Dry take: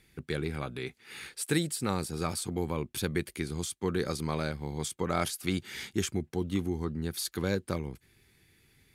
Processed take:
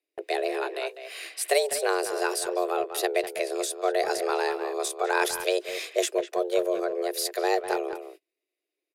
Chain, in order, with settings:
frequency shifter +270 Hz
far-end echo of a speakerphone 200 ms, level −9 dB
noise gate −51 dBFS, range −29 dB
level +5 dB

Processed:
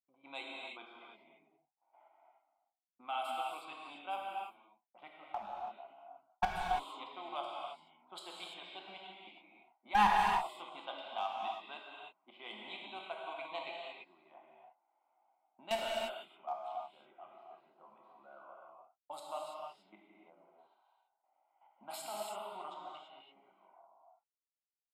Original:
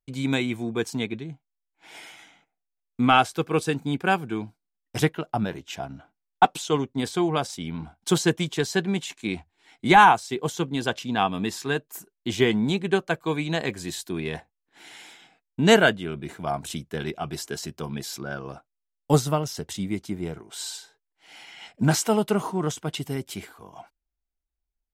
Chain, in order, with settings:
pitch vibrato 0.75 Hz 34 cents
low-pass that shuts in the quiet parts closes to 1,100 Hz, open at −16.5 dBFS
high-shelf EQ 11,000 Hz +10.5 dB
output level in coarse steps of 13 dB
four-pole ladder high-pass 480 Hz, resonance 50%
phaser with its sweep stopped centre 1,700 Hz, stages 6
low-pass that shuts in the quiet parts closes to 1,000 Hz, open at −38 dBFS
asymmetric clip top −27 dBFS
reverb whose tail is shaped and stops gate 360 ms flat, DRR −2.5 dB
level −3.5 dB

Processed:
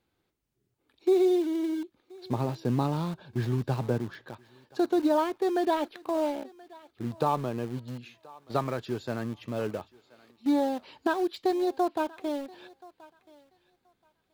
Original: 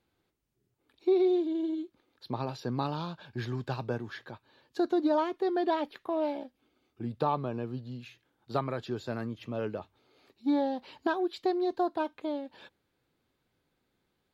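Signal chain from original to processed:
0:02.31–0:04.27: tilt shelving filter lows +5 dB, about 740 Hz
in parallel at −10.5 dB: bit reduction 6 bits
on the sum: feedback echo with a high-pass in the loop 1,028 ms, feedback 20%, high-pass 600 Hz, level −20 dB

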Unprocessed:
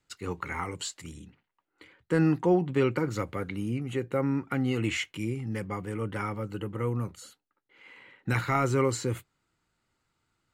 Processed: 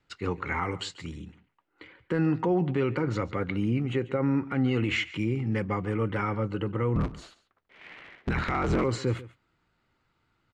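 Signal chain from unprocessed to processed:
0:06.95–0:08.84: sub-harmonics by changed cycles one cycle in 3, inverted
low-pass filter 3,700 Hz 12 dB per octave
brickwall limiter −23 dBFS, peak gain reduction 8.5 dB
single-tap delay 141 ms −18 dB
level +5 dB

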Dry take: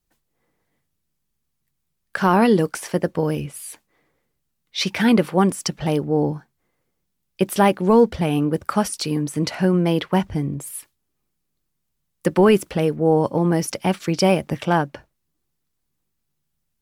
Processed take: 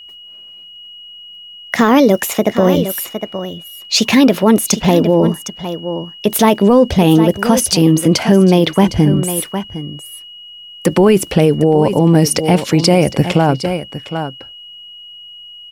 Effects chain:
gliding playback speed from 126% → 88%
steady tone 2,900 Hz −47 dBFS
single-tap delay 759 ms −14.5 dB
dynamic equaliser 1,400 Hz, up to −6 dB, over −38 dBFS, Q 1.3
boost into a limiter +13.5 dB
level −1 dB

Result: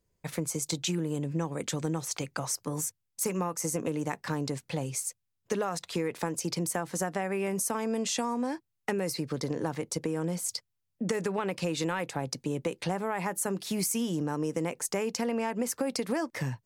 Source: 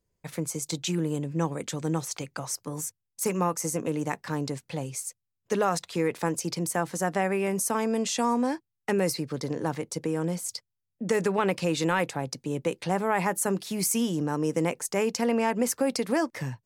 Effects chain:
downward compressor, threshold −29 dBFS, peak gain reduction 9.5 dB
level +2 dB

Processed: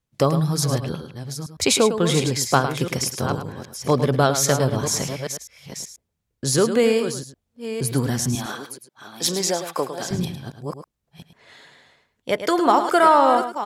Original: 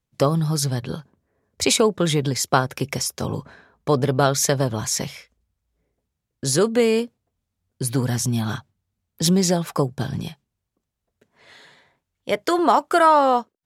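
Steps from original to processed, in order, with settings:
delay that plays each chunk backwards 488 ms, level −9.5 dB
0:08.35–0:10.11: high-pass filter 400 Hz 12 dB per octave
single-tap delay 106 ms −10 dB

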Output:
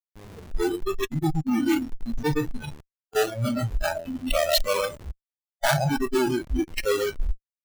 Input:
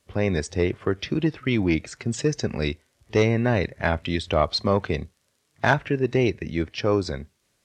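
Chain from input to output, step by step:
delay that swaps between a low-pass and a high-pass 115 ms, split 900 Hz, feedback 57%, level −4.5 dB
comparator with hysteresis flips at −24.5 dBFS
noise reduction from a noise print of the clip's start 26 dB
level +6 dB

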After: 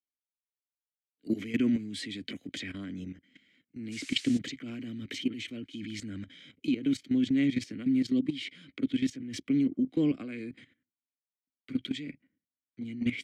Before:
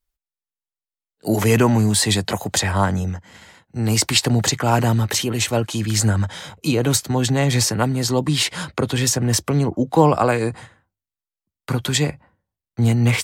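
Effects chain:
formant filter i
output level in coarse steps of 14 dB
0:03.91–0:04.37: noise in a band 1,800–8,500 Hz −52 dBFS
level +3.5 dB

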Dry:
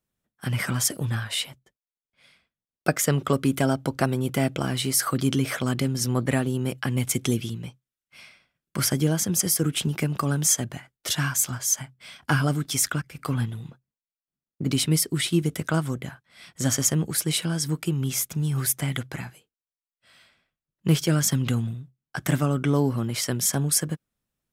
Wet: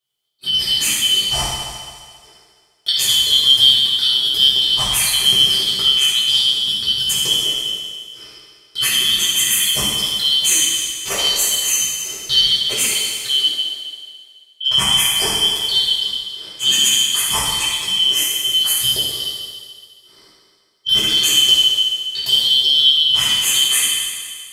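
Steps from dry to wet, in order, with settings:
band-splitting scrambler in four parts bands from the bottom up 3412
0:00.81–0:01.33: low-shelf EQ 230 Hz +8 dB
convolution reverb RT60 1.9 s, pre-delay 4 ms, DRR −9.5 dB
level −2 dB

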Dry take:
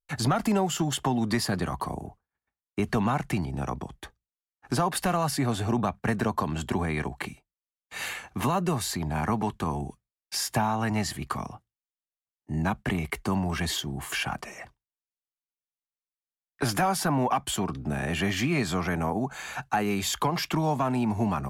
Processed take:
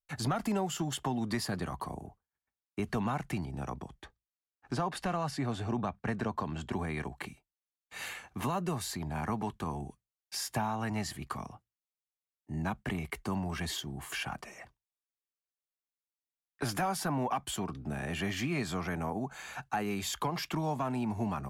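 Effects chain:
0:04.02–0:06.73: high-frequency loss of the air 58 metres
level −7 dB

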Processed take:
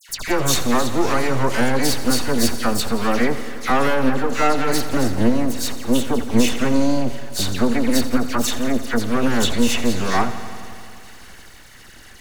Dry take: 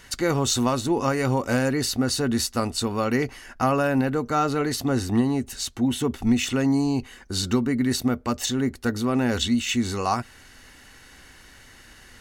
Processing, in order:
half-wave rectification
all-pass dispersion lows, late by 89 ms, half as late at 2,200 Hz
feedback echo at a low word length 86 ms, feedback 80%, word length 9 bits, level −14.5 dB
level +8.5 dB

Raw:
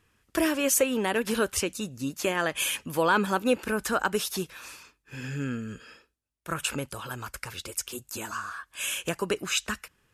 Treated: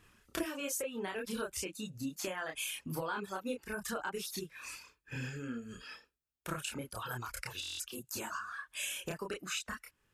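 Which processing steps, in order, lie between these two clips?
reverb reduction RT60 1.6 s
downward compressor 4 to 1, threshold −43 dBFS, peak gain reduction 20 dB
multi-voice chorus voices 4, 0.89 Hz, delay 29 ms, depth 3.8 ms
buffer that repeats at 0:07.61, samples 1,024, times 7
level +7.5 dB

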